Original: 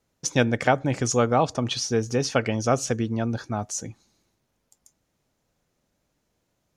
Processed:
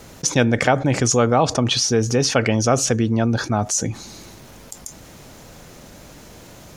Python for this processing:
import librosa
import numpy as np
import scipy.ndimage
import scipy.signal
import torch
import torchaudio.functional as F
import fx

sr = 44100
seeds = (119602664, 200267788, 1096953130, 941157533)

y = fx.env_flatten(x, sr, amount_pct=50)
y = y * librosa.db_to_amplitude(2.5)